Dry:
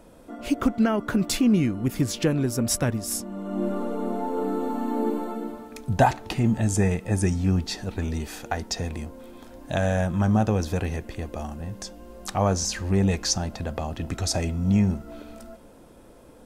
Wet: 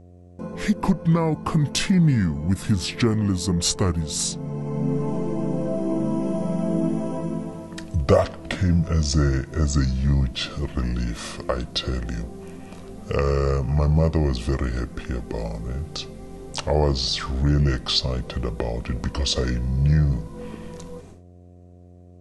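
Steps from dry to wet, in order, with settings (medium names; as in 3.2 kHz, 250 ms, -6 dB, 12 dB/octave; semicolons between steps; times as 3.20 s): gate with hold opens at -36 dBFS; in parallel at -2 dB: compression, threshold -29 dBFS, peak gain reduction 15 dB; on the sum: mains buzz 120 Hz, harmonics 8, -47 dBFS -6 dB/octave; speed mistake 45 rpm record played at 33 rpm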